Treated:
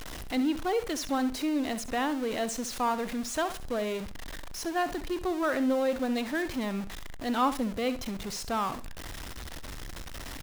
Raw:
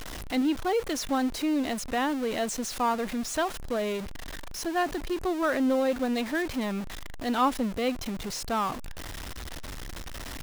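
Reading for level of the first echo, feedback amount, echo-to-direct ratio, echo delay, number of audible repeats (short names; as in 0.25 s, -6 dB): -13.5 dB, 24%, -13.5 dB, 66 ms, 2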